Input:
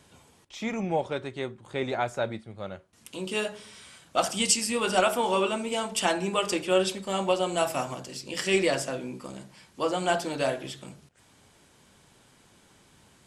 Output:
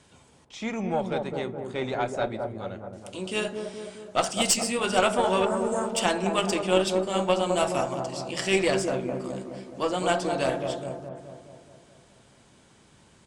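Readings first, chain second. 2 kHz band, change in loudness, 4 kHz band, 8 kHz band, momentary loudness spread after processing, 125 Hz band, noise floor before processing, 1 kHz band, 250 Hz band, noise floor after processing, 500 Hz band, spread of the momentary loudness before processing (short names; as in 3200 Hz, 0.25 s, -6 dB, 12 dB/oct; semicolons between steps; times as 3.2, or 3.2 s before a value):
+0.5 dB, +1.0 dB, +0.5 dB, 0.0 dB, 14 LU, +3.0 dB, -60 dBFS, +1.5 dB, +2.5 dB, -58 dBFS, +2.0 dB, 17 LU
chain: spectral repair 5.47–5.87, 1900–6100 Hz after; downsampling 22050 Hz; on a send: dark delay 0.211 s, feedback 58%, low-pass 890 Hz, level -3.5 dB; on the sum: added harmonics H 4 -18 dB, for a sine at -5.5 dBFS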